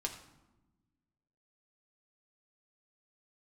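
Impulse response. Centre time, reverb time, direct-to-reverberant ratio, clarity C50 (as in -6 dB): 17 ms, 1.0 s, 1.0 dB, 9.0 dB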